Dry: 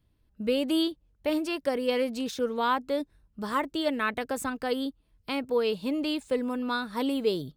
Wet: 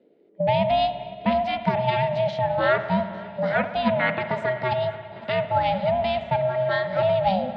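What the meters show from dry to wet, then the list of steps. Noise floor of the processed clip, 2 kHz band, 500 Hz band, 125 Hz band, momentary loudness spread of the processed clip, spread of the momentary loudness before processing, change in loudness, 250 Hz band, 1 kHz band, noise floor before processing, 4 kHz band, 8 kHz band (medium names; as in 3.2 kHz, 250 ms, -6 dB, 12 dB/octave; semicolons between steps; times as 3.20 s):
-44 dBFS, +7.0 dB, +7.0 dB, +19.0 dB, 6 LU, 7 LU, +6.0 dB, -1.0 dB, +9.5 dB, -69 dBFS, +1.0 dB, under -20 dB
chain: bass shelf 420 Hz +7 dB; ring modulator 380 Hz; cabinet simulation 190–3900 Hz, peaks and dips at 200 Hz +9 dB, 350 Hz -3 dB, 580 Hz +6 dB, 1.1 kHz -5 dB, 2 kHz +7 dB; on a send: shuffle delay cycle 850 ms, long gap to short 1.5:1, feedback 64%, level -21.5 dB; on the sum: spring tank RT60 1.8 s, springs 56 ms, chirp 60 ms, DRR 10 dB; trim +5 dB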